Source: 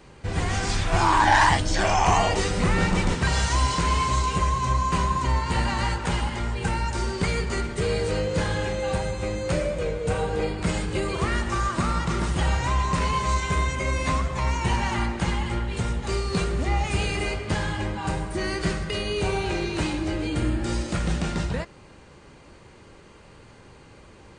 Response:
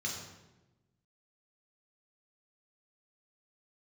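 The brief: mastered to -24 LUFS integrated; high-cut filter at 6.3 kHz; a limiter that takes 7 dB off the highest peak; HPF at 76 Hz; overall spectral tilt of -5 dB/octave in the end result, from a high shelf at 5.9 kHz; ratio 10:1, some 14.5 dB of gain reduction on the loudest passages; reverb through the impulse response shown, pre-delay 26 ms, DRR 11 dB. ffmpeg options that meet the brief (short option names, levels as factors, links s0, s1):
-filter_complex "[0:a]highpass=76,lowpass=6300,highshelf=f=5900:g=3,acompressor=threshold=0.0355:ratio=10,alimiter=level_in=1.06:limit=0.0631:level=0:latency=1,volume=0.944,asplit=2[s0][s1];[1:a]atrim=start_sample=2205,adelay=26[s2];[s1][s2]afir=irnorm=-1:irlink=0,volume=0.211[s3];[s0][s3]amix=inputs=2:normalize=0,volume=3.16"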